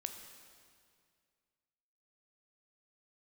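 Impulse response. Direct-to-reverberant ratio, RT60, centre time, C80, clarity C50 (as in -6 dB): 5.5 dB, 2.1 s, 36 ms, 8.0 dB, 7.0 dB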